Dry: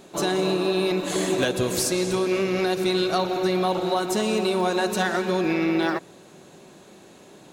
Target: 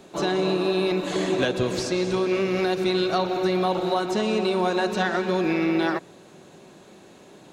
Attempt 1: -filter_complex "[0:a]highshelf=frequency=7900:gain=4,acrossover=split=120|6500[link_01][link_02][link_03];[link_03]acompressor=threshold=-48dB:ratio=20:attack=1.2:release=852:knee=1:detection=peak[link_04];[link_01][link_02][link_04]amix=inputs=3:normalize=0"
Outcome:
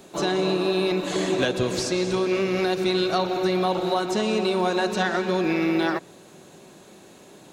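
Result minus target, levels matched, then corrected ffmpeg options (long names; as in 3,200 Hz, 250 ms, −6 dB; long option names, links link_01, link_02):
8,000 Hz band +3.0 dB
-filter_complex "[0:a]highshelf=frequency=7900:gain=-6.5,acrossover=split=120|6500[link_01][link_02][link_03];[link_03]acompressor=threshold=-48dB:ratio=20:attack=1.2:release=852:knee=1:detection=peak[link_04];[link_01][link_02][link_04]amix=inputs=3:normalize=0"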